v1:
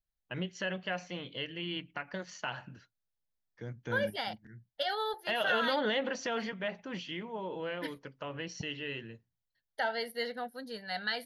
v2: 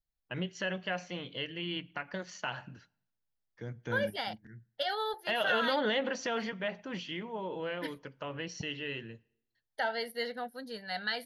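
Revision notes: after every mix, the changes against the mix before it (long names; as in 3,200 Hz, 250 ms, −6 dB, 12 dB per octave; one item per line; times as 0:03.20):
reverb: on, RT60 0.75 s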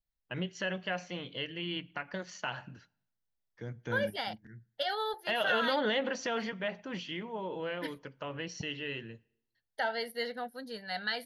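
nothing changed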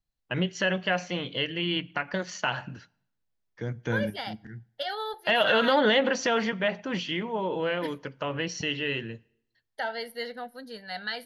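first voice +8.5 dB
second voice: send on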